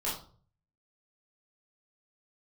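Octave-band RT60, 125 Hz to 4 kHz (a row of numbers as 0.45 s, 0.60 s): 0.75 s, 0.60 s, 0.50 s, 0.45 s, 0.30 s, 0.35 s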